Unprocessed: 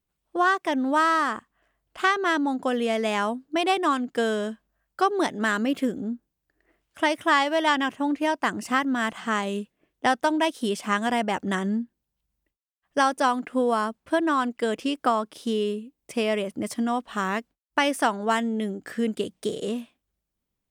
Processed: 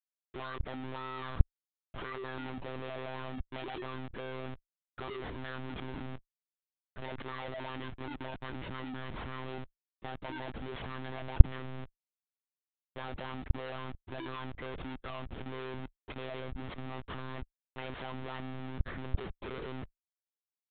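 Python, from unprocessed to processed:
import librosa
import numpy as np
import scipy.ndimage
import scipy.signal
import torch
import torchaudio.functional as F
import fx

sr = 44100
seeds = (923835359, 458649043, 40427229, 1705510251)

y = fx.schmitt(x, sr, flips_db=-38.0)
y = fx.lpc_monotone(y, sr, seeds[0], pitch_hz=130.0, order=16)
y = y * librosa.db_to_amplitude(-14.0)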